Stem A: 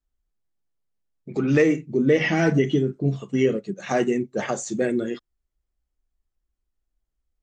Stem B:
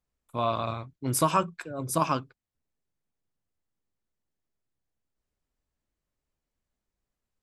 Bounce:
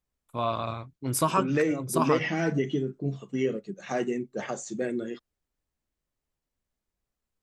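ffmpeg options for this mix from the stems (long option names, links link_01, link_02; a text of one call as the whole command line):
ffmpeg -i stem1.wav -i stem2.wav -filter_complex "[0:a]highpass=100,volume=-7dB[link_01];[1:a]volume=-1dB[link_02];[link_01][link_02]amix=inputs=2:normalize=0" out.wav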